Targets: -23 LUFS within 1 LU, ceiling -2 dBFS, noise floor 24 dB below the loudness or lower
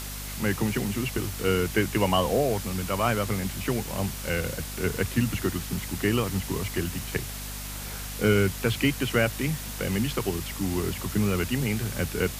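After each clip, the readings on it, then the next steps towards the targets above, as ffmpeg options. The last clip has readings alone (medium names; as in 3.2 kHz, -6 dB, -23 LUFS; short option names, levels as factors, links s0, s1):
hum 50 Hz; highest harmonic 250 Hz; hum level -36 dBFS; noise floor -36 dBFS; noise floor target -52 dBFS; loudness -27.5 LUFS; peak level -9.5 dBFS; loudness target -23.0 LUFS
-> -af "bandreject=f=50:t=h:w=6,bandreject=f=100:t=h:w=6,bandreject=f=150:t=h:w=6,bandreject=f=200:t=h:w=6,bandreject=f=250:t=h:w=6"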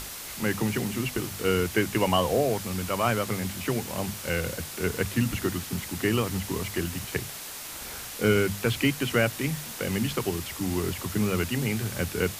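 hum not found; noise floor -39 dBFS; noise floor target -52 dBFS
-> -af "afftdn=nr=13:nf=-39"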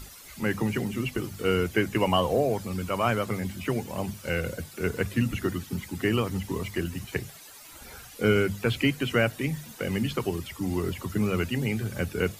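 noise floor -47 dBFS; noise floor target -53 dBFS
-> -af "afftdn=nr=6:nf=-47"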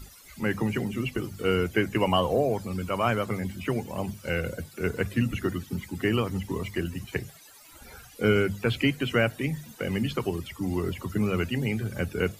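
noise floor -51 dBFS; noise floor target -53 dBFS
-> -af "afftdn=nr=6:nf=-51"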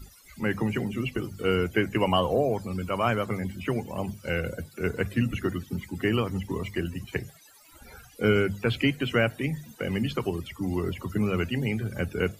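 noise floor -54 dBFS; loudness -28.5 LUFS; peak level -10.0 dBFS; loudness target -23.0 LUFS
-> -af "volume=1.88"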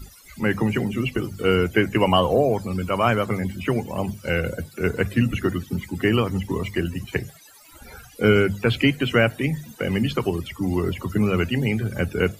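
loudness -23.0 LUFS; peak level -4.5 dBFS; noise floor -48 dBFS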